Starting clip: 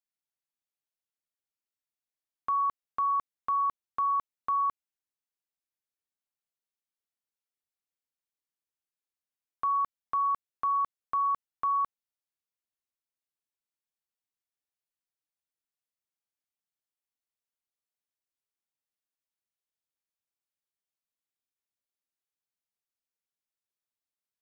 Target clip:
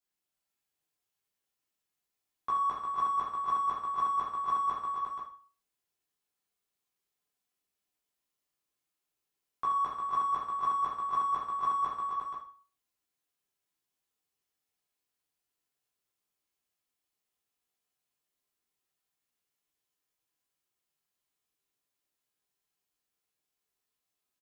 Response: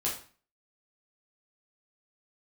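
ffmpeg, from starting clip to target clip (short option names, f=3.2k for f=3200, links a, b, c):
-filter_complex "[0:a]asplit=2[a][b];[b]asoftclip=type=tanh:threshold=-32dB,volume=-8.5dB[c];[a][c]amix=inputs=2:normalize=0,aecho=1:1:68|158|245|288|352|479:0.355|0.133|0.355|0.126|0.501|0.422[d];[1:a]atrim=start_sample=2205[e];[d][e]afir=irnorm=-1:irlink=0,volume=-3.5dB"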